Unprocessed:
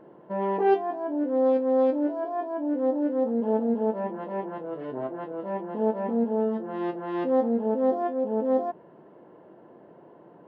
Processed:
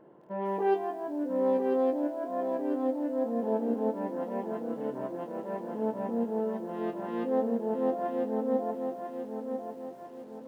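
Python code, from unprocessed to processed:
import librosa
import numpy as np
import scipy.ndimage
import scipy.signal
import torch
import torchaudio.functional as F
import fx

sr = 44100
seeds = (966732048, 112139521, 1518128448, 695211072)

y = fx.echo_feedback(x, sr, ms=995, feedback_pct=44, wet_db=-6.5)
y = fx.echo_crushed(y, sr, ms=153, feedback_pct=35, bits=8, wet_db=-13.5)
y = F.gain(torch.from_numpy(y), -5.5).numpy()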